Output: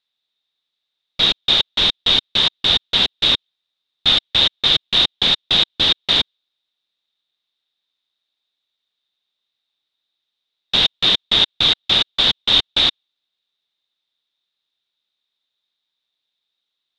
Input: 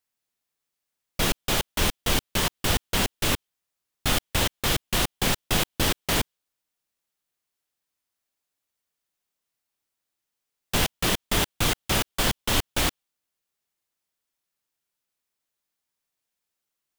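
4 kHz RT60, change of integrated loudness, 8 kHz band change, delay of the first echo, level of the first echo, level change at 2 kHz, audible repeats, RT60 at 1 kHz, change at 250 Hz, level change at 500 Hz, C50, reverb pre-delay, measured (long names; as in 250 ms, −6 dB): no reverb audible, +10.0 dB, −9.5 dB, no echo audible, no echo audible, +3.5 dB, no echo audible, no reverb audible, −1.5 dB, −0.5 dB, no reverb audible, no reverb audible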